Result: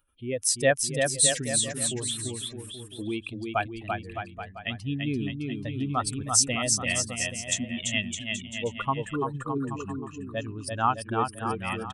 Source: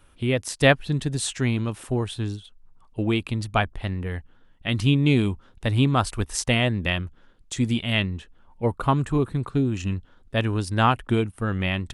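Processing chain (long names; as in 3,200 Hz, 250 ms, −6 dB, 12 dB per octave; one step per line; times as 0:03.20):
expanding power law on the bin magnitudes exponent 1.9
RIAA equalisation recording
on a send: bouncing-ball delay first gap 340 ms, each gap 0.8×, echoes 5
on the sum: level −2.5 dB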